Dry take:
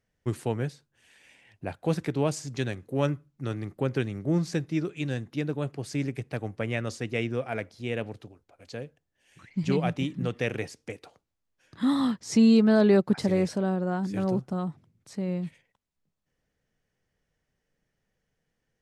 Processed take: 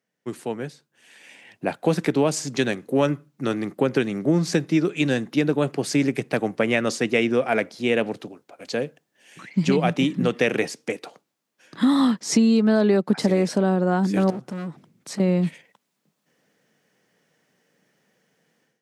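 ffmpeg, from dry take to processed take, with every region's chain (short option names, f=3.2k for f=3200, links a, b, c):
-filter_complex "[0:a]asettb=1/sr,asplit=3[a][b][c];[a]atrim=end=14.304[d];[b]atrim=start=14.3:end=15.2,asetpts=PTS-STARTPTS,afade=t=in:d=0.004:c=qsin,afade=t=out:st=0.896:d=0.004:c=qsin,aeval=exprs='clip(val(0),-1,0.0158)':c=same,acompressor=threshold=-42dB:ratio=2:attack=3.2:release=140:knee=1:detection=peak[e];[c]atrim=start=15.196[f];[d][e]acrossfade=d=0.004:c1=hsin:c2=qsin[g];[g][f]acrossfade=d=0.004:c1=qsin:c2=hsin,dynaudnorm=f=690:g=3:m=14.5dB,highpass=f=170:w=0.5412,highpass=f=170:w=1.3066,acompressor=threshold=-15dB:ratio=6"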